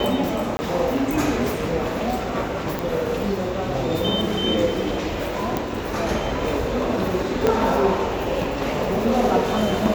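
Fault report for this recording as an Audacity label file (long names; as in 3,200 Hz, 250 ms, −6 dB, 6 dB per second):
0.570000	0.590000	drop-out 20 ms
2.790000	2.790000	click
5.570000	5.570000	click
7.470000	7.470000	click −6 dBFS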